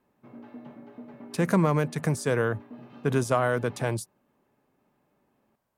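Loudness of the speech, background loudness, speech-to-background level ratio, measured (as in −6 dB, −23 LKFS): −27.0 LKFS, −46.0 LKFS, 19.0 dB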